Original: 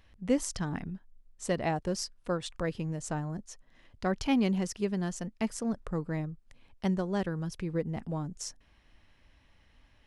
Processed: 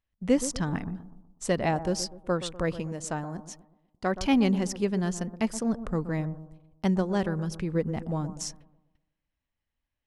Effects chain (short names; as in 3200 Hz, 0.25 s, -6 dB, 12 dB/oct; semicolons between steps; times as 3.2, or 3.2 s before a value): gate -52 dBFS, range -28 dB; 2.8–4.16 low shelf 170 Hz -9.5 dB; analogue delay 0.123 s, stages 1024, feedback 43%, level -12.5 dB; gain +4 dB